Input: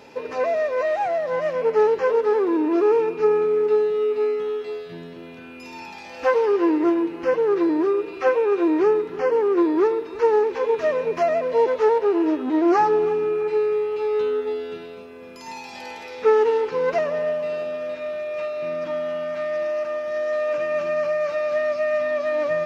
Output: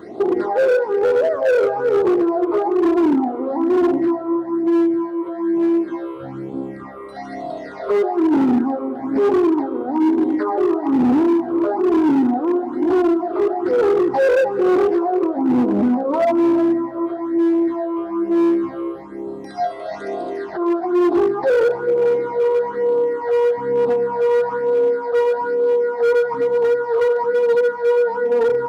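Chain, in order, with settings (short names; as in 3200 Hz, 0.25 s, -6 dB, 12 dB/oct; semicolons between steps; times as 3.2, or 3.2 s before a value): varispeed -21%; in parallel at -1.5 dB: compressor, threshold -27 dBFS, peak gain reduction 13.5 dB; on the sum: EQ curve 190 Hz 0 dB, 280 Hz +11 dB, 420 Hz +10 dB, 920 Hz +11 dB, 1800 Hz 0 dB, 2800 Hz -13 dB, 5000 Hz -1 dB; limiter -7.5 dBFS, peak gain reduction 12 dB; band-limited delay 74 ms, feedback 61%, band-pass 570 Hz, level -7 dB; phaser stages 8, 1.1 Hz, lowest notch 220–1900 Hz; hard clip -12.5 dBFS, distortion -13 dB; HPF 65 Hz; on a send at -21 dB: reverb RT60 3.1 s, pre-delay 0.105 s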